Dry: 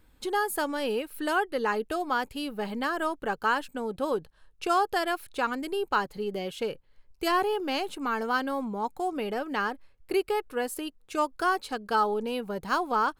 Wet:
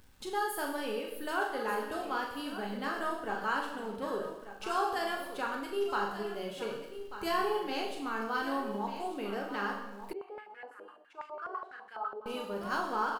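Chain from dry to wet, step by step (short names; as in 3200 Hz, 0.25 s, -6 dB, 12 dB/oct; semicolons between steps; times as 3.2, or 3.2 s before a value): gate -55 dBFS, range -20 dB; upward compressor, threshold -34 dBFS; crackle 240/s -45 dBFS; doubler 40 ms -7 dB; echo 1.19 s -12 dB; plate-style reverb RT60 0.94 s, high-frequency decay 1×, DRR 1 dB; 10.13–12.26 stepped band-pass 12 Hz 500–2000 Hz; gain -9 dB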